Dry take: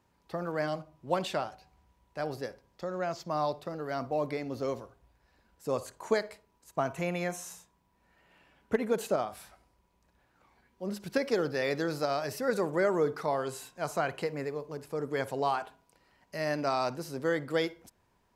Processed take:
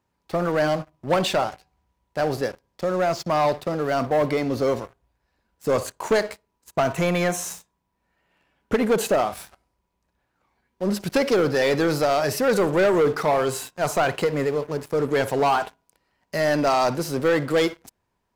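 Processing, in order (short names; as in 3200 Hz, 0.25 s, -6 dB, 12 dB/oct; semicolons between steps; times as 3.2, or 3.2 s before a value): sample leveller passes 3; gain +1.5 dB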